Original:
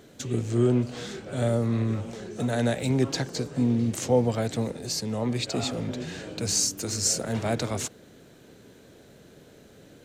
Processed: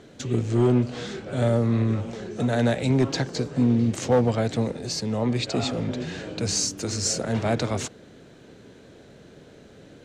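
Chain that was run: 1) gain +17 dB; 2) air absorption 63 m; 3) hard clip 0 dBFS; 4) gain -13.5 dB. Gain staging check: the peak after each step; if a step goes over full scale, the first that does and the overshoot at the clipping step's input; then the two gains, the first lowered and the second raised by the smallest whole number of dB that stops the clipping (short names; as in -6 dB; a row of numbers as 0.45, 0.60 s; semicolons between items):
+5.5, +5.5, 0.0, -13.5 dBFS; step 1, 5.5 dB; step 1 +11 dB, step 4 -7.5 dB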